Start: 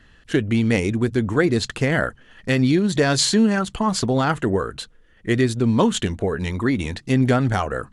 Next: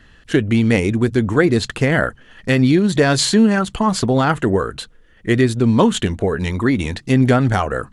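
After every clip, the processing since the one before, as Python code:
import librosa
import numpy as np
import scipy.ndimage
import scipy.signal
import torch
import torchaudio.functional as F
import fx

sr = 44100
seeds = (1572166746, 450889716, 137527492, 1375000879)

y = fx.dynamic_eq(x, sr, hz=5800.0, q=1.1, threshold_db=-37.0, ratio=4.0, max_db=-4)
y = y * librosa.db_to_amplitude(4.0)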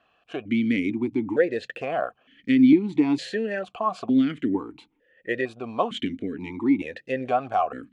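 y = fx.vowel_held(x, sr, hz=2.2)
y = y * librosa.db_to_amplitude(2.5)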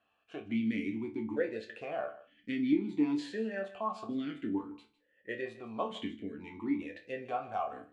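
y = fx.resonator_bank(x, sr, root=38, chord='sus4', decay_s=0.27)
y = y + 10.0 ** (-17.5 / 20.0) * np.pad(y, (int(155 * sr / 1000.0), 0))[:len(y)]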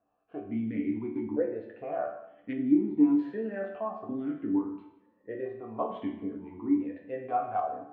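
y = fx.filter_lfo_lowpass(x, sr, shape='saw_up', hz=0.79, low_hz=730.0, high_hz=1600.0, q=0.96)
y = fx.rev_double_slope(y, sr, seeds[0], early_s=0.7, late_s=1.9, knee_db=-18, drr_db=4.5)
y = y * librosa.db_to_amplitude(1.5)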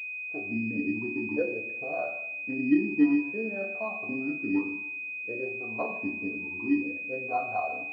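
y = fx.pwm(x, sr, carrier_hz=2500.0)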